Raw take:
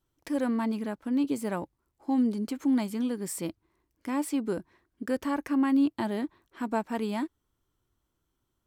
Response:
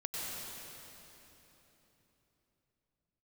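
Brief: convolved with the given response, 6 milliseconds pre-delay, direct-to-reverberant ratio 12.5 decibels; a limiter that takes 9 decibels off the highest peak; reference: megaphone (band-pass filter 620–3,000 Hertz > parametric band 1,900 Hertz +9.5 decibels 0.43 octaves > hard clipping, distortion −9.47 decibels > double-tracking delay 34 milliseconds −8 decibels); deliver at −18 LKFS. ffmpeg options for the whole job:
-filter_complex "[0:a]alimiter=level_in=1.5dB:limit=-24dB:level=0:latency=1,volume=-1.5dB,asplit=2[link_01][link_02];[1:a]atrim=start_sample=2205,adelay=6[link_03];[link_02][link_03]afir=irnorm=-1:irlink=0,volume=-15.5dB[link_04];[link_01][link_04]amix=inputs=2:normalize=0,highpass=620,lowpass=3000,equalizer=frequency=1900:width_type=o:width=0.43:gain=9.5,asoftclip=type=hard:threshold=-35.5dB,asplit=2[link_05][link_06];[link_06]adelay=34,volume=-8dB[link_07];[link_05][link_07]amix=inputs=2:normalize=0,volume=25dB"

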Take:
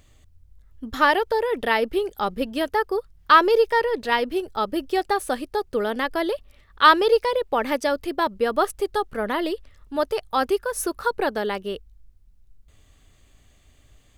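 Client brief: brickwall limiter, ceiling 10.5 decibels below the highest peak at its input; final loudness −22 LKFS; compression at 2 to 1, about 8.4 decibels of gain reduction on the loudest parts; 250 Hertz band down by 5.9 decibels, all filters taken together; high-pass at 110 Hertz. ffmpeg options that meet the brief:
ffmpeg -i in.wav -af "highpass=110,equalizer=frequency=250:width_type=o:gain=-9,acompressor=threshold=-24dB:ratio=2,volume=9dB,alimiter=limit=-10.5dB:level=0:latency=1" out.wav

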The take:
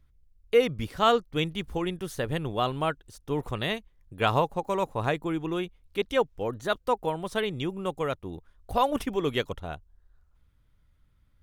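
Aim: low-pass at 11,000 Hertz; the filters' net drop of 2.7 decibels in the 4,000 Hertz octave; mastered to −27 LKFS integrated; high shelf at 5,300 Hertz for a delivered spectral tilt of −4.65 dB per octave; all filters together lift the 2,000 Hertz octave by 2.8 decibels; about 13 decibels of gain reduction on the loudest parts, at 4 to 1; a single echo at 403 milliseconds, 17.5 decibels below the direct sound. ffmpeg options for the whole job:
ffmpeg -i in.wav -af "lowpass=11000,equalizer=frequency=2000:width_type=o:gain=5,equalizer=frequency=4000:width_type=o:gain=-9,highshelf=frequency=5300:gain=7,acompressor=threshold=-31dB:ratio=4,aecho=1:1:403:0.133,volume=9dB" out.wav

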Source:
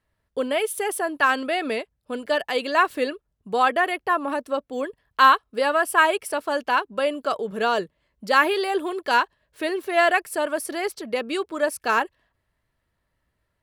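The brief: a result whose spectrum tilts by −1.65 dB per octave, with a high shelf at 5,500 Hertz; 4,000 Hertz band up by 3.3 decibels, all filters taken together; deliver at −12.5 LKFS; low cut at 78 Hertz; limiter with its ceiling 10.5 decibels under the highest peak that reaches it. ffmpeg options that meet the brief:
ffmpeg -i in.wav -af "highpass=78,equalizer=frequency=4000:width_type=o:gain=3.5,highshelf=frequency=5500:gain=3,volume=13dB,alimiter=limit=-0.5dB:level=0:latency=1" out.wav

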